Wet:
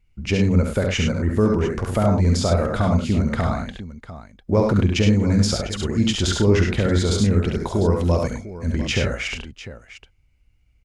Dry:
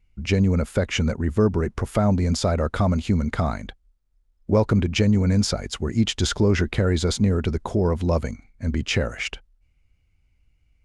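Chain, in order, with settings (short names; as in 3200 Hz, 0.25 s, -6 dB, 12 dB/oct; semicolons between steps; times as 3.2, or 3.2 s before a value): 7.47–8.74 high shelf 5700 Hz +6 dB; tapped delay 47/69/101/700 ms -13/-4/-7.5/-14 dB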